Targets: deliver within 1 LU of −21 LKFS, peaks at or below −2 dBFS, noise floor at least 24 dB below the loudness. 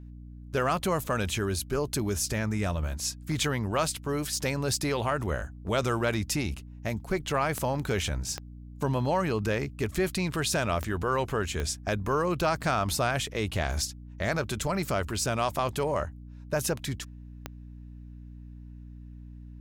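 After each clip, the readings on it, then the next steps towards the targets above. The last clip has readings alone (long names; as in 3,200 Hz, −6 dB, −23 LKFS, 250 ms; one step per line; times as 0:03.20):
number of clicks 5; mains hum 60 Hz; hum harmonics up to 300 Hz; level of the hum −42 dBFS; integrated loudness −29.5 LKFS; sample peak −14.5 dBFS; target loudness −21.0 LKFS
→ click removal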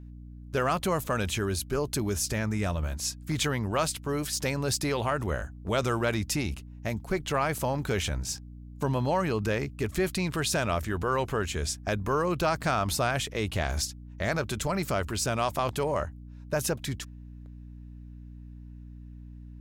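number of clicks 0; mains hum 60 Hz; hum harmonics up to 300 Hz; level of the hum −42 dBFS
→ mains-hum notches 60/120/180/240/300 Hz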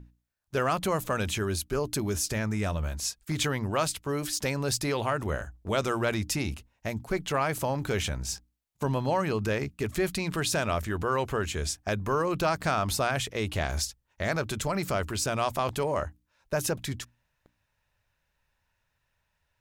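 mains hum none found; integrated loudness −29.5 LKFS; sample peak −13.5 dBFS; target loudness −21.0 LKFS
→ level +8.5 dB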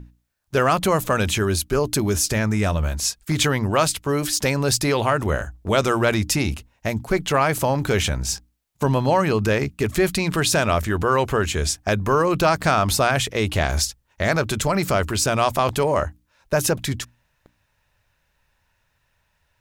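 integrated loudness −21.0 LKFS; sample peak −5.0 dBFS; background noise floor −69 dBFS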